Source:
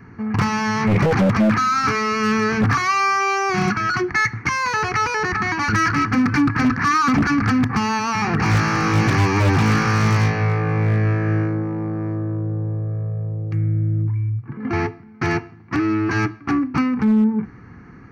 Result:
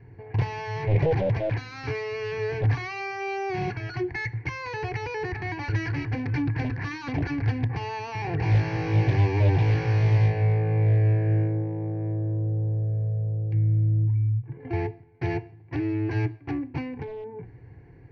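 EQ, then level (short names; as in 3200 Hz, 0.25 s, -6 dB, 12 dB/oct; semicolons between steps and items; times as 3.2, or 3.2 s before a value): air absorption 290 m; bell 120 Hz +6 dB 0.67 oct; fixed phaser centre 520 Hz, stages 4; -3.0 dB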